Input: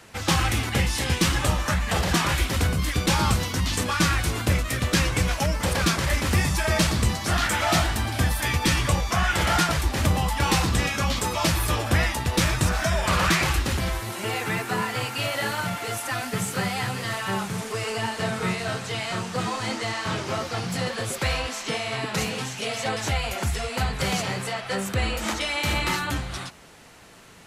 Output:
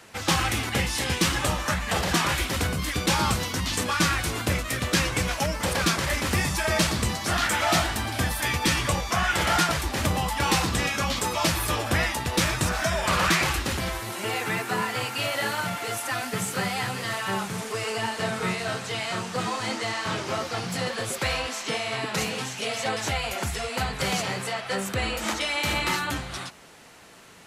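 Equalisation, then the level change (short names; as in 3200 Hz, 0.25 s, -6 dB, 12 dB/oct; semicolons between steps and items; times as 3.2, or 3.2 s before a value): low shelf 120 Hz -8.5 dB; 0.0 dB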